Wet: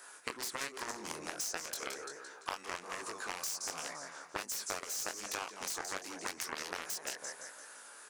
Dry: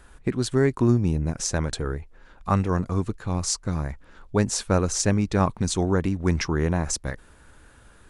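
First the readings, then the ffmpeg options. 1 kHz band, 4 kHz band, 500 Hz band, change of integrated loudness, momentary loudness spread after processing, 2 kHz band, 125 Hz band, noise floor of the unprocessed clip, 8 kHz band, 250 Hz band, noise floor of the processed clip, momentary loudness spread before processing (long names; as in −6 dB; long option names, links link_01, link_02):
−10.5 dB, −7.5 dB, −19.5 dB, −15.0 dB, 7 LU, −6.0 dB, −38.5 dB, −53 dBFS, −8.5 dB, −27.5 dB, −54 dBFS, 9 LU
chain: -filter_complex "[0:a]highpass=440,acrossover=split=1500|7600[link_01][link_02][link_03];[link_01]acompressor=threshold=-30dB:ratio=4[link_04];[link_02]acompressor=threshold=-37dB:ratio=4[link_05];[link_03]acompressor=threshold=-46dB:ratio=4[link_06];[link_04][link_05][link_06]amix=inputs=3:normalize=0,aecho=1:1:171|342|513|684|855:0.316|0.139|0.0612|0.0269|0.0119,flanger=delay=18:depth=6.9:speed=1.3,aeval=exprs='0.126*(cos(1*acos(clip(val(0)/0.126,-1,1)))-cos(1*PI/2))+0.0282*(cos(7*acos(clip(val(0)/0.126,-1,1)))-cos(7*PI/2))':channel_layout=same,aexciter=amount=3.2:drive=6.9:freq=4800,asplit=2[link_07][link_08];[link_08]highpass=frequency=720:poles=1,volume=19dB,asoftclip=type=tanh:threshold=-8dB[link_09];[link_07][link_09]amix=inputs=2:normalize=0,lowpass=frequency=4200:poles=1,volume=-6dB,acompressor=threshold=-33dB:ratio=6,volume=-2.5dB"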